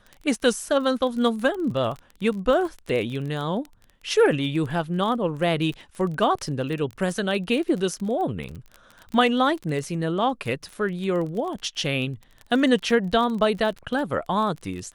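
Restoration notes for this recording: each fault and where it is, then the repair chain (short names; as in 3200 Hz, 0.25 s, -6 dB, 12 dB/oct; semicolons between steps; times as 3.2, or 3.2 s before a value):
crackle 25/s -30 dBFS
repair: de-click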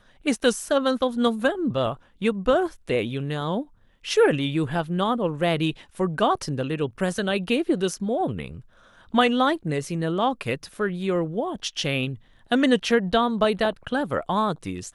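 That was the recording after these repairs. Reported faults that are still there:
none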